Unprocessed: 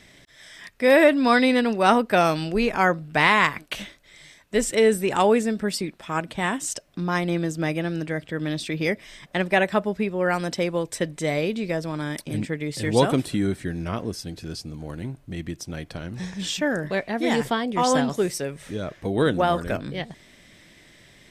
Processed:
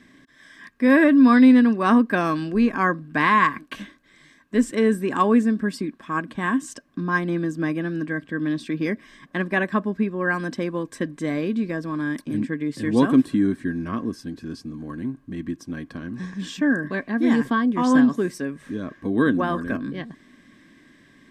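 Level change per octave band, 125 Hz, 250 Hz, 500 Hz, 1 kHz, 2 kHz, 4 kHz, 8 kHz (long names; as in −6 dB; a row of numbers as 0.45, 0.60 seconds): −1.5, +6.0, −4.0, −0.5, 0.0, −8.0, −9.5 decibels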